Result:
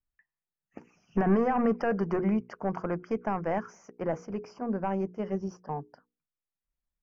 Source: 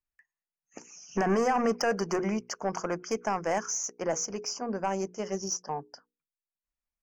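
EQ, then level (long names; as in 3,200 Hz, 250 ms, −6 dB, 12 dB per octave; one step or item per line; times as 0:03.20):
high-frequency loss of the air 470 metres
bass and treble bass +7 dB, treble +1 dB
0.0 dB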